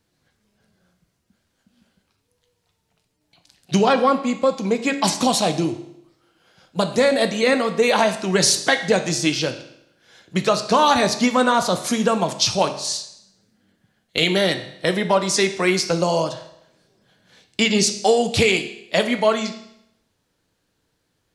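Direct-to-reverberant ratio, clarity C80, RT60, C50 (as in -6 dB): 7.0 dB, 13.5 dB, 0.75 s, 11.0 dB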